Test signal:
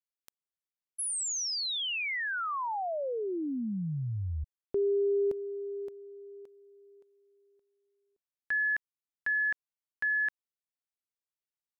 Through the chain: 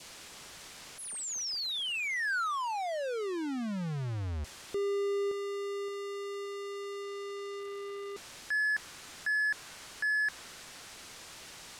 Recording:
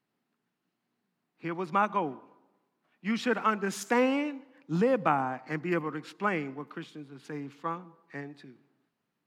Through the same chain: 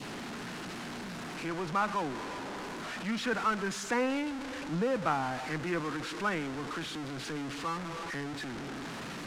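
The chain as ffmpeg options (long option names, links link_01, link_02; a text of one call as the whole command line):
ffmpeg -i in.wav -af "aeval=exprs='val(0)+0.5*0.0473*sgn(val(0))':channel_layout=same,adynamicequalizer=threshold=0.01:dfrequency=1500:dqfactor=2.1:tfrequency=1500:tqfactor=2.1:attack=5:release=100:ratio=0.375:range=2:mode=boostabove:tftype=bell,lowpass=7500,volume=-7.5dB" out.wav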